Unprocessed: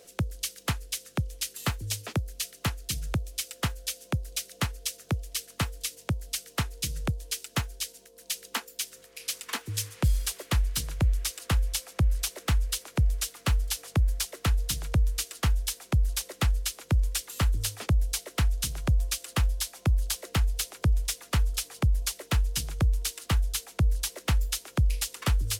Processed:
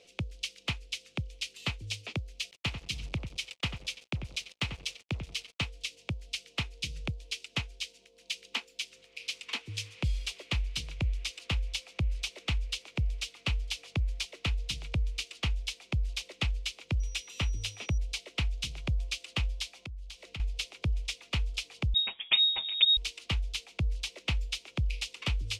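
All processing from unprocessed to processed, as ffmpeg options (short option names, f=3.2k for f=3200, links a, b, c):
-filter_complex "[0:a]asettb=1/sr,asplit=3[a][b][c];[a]atrim=end=2.514[d];[b]atrim=start=2.51:end=5.66,asetpts=PTS-STARTPTS,afade=t=in:d=0.004:c=qsin,afade=t=out:st=3.146:d=0.004:c=qsin,asplit=2[e][f];[f]adelay=92,lowpass=f=1.5k:p=1,volume=-7dB,asplit=2[g][h];[h]adelay=92,lowpass=f=1.5k:p=1,volume=0.16,asplit=2[i][j];[j]adelay=92,lowpass=f=1.5k:p=1,volume=0.16[k];[e][g][i][k]amix=inputs=4:normalize=0,atrim=end_sample=138915,acrusher=bits=6:mix=0:aa=0.5[l];[c]atrim=start=5.656[m];[d][l]acrossfade=d=0.004:c1=hsin:c2=qsin[n];[n][m]acrossfade=d=0.004:c1=qsin:c2=hsin,asettb=1/sr,asplit=3[o][p][q];[o]atrim=end=17.004[r];[p]atrim=start=17:end=17.98,asetpts=PTS-STARTPTS,afade=t=in:d=0.004:c=qsin,afade=t=out:st=0.976:d=0.004:c=qsin,bandreject=f=4.5k:w=14,aeval=exprs='val(0)+0.00631*sin(2*PI*5800*n/s)':c=same[s];[q]atrim=start=17.976[t];[r][s]acrossfade=d=0.004:c1=hsin:c2=qsin[u];[u][t]acrossfade=d=0.004:c1=qsin:c2=hsin,asettb=1/sr,asplit=3[v][w][x];[v]atrim=end=19.724[y];[w]atrim=start=19.72:end=20.4,asetpts=PTS-STARTPTS,afade=t=in:d=0.004:c=qsin,afade=t=out:st=0.676:d=0.004:c=qsin,asubboost=boost=9:cutoff=160,acompressor=threshold=-39dB:ratio=3:attack=3.2:release=140:knee=1:detection=peak[z];[x]atrim=start=20.396[aa];[y][z]acrossfade=d=0.004:c1=hsin:c2=qsin[ab];[ab][aa]acrossfade=d=0.004:c1=qsin:c2=hsin,asettb=1/sr,asplit=3[ac][ad][ae];[ac]atrim=end=21.944[af];[ad]atrim=start=21.94:end=22.97,asetpts=PTS-STARTPTS,afade=t=in:d=0.004:c=qsin,afade=t=out:st=1.026:d=0.004:c=qsin,aecho=1:1:6.7:0.93,atrim=end_sample=45423,lowpass=f=3.2k:t=q:w=0.5098,lowpass=f=3.2k:t=q:w=0.6013,lowpass=f=3.2k:t=q:w=0.9,lowpass=f=3.2k:t=q:w=2.563,afreqshift=-3800[ag];[ae]atrim=start=22.966[ah];[af][ag]acrossfade=d=0.004:c1=hsin:c2=qsin[ai];[ai][ah]acrossfade=d=0.004:c1=qsin:c2=hsin,lowpass=4.1k,highshelf=f=2k:t=q:w=3:g=6,volume=-6.5dB"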